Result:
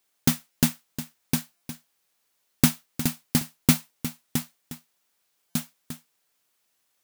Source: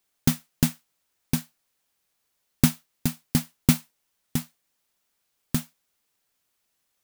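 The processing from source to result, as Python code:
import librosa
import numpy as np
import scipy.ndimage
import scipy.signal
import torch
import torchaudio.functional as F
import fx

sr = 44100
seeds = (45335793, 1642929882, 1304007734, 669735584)

y = fx.low_shelf(x, sr, hz=150.0, db=-9.0)
y = y + 10.0 ** (-12.5 / 20.0) * np.pad(y, (int(358 * sr / 1000.0), 0))[:len(y)]
y = fx.buffer_glitch(y, sr, at_s=(0.51, 1.56, 5.5), block=256, repeats=8)
y = y * librosa.db_to_amplitude(2.5)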